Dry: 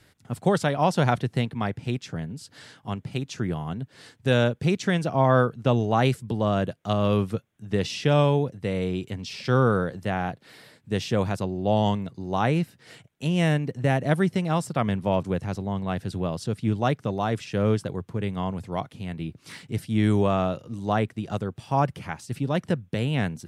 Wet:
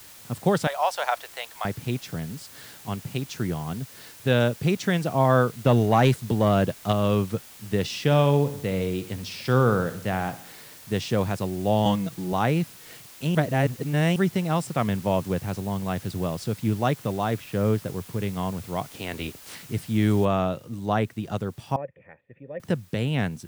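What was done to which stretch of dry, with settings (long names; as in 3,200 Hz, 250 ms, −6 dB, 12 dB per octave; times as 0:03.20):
0:00.67–0:01.65: Butterworth high-pass 580 Hz
0:03.56–0:04.39: low-pass filter 8,600 Hz → 4,500 Hz 24 dB per octave
0:05.65–0:06.92: leveller curve on the samples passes 1
0:08.00–0:10.97: repeating echo 63 ms, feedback 55%, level −14.5 dB
0:11.85–0:12.33: comb filter 6.1 ms, depth 99%
0:13.35–0:14.16: reverse
0:17.34–0:17.99: high-frequency loss of the air 250 metres
0:18.91–0:19.54: ceiling on every frequency bin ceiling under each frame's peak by 19 dB
0:20.25: noise floor change −47 dB −59 dB
0:21.76–0:22.60: formant resonators in series e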